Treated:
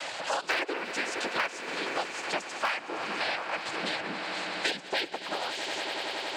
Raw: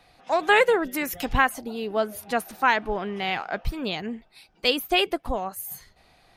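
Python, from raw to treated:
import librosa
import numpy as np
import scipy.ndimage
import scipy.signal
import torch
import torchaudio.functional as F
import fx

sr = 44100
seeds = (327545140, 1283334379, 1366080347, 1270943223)

y = fx.highpass(x, sr, hz=1300.0, slope=6)
y = fx.noise_vocoder(y, sr, seeds[0], bands=8)
y = np.clip(y, -10.0 ** (-15.5 / 20.0), 10.0 ** (-15.5 / 20.0))
y = fx.echo_swell(y, sr, ms=93, loudest=5, wet_db=-18.0)
y = fx.band_squash(y, sr, depth_pct=100)
y = y * librosa.db_to_amplitude(-2.0)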